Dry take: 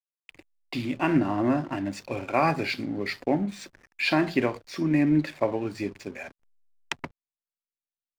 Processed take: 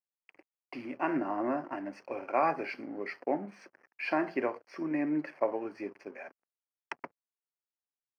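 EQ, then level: running mean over 12 samples; HPF 400 Hz 12 dB/oct; -2.5 dB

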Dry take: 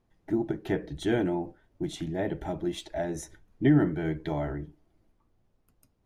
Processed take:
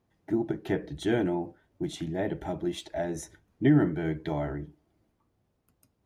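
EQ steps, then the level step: HPF 64 Hz; 0.0 dB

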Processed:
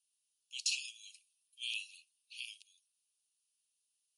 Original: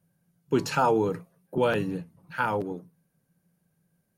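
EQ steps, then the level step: steep high-pass 2600 Hz 96 dB/oct; brick-wall FIR low-pass 11000 Hz; +2.5 dB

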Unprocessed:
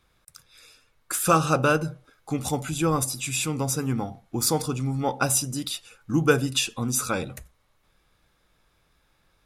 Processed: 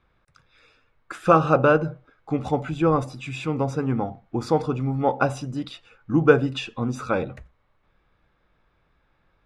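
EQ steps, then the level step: LPF 2300 Hz 12 dB/oct; dynamic EQ 560 Hz, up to +5 dB, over -36 dBFS, Q 0.87; +1.0 dB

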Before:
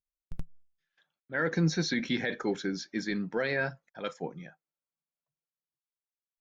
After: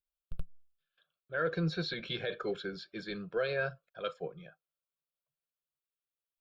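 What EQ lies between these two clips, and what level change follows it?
fixed phaser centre 1300 Hz, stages 8; 0.0 dB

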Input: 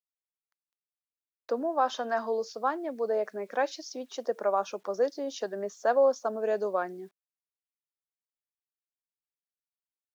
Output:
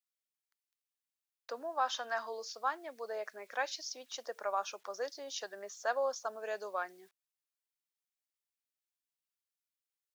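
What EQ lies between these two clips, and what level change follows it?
tilt shelf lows -9 dB, about 650 Hz; low shelf 310 Hz -9.5 dB; -7.5 dB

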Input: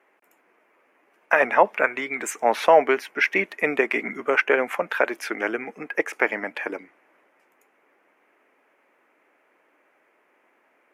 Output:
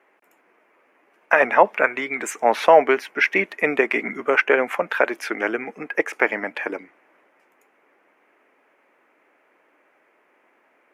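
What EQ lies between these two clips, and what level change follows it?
high shelf 6800 Hz -4.5 dB; +2.5 dB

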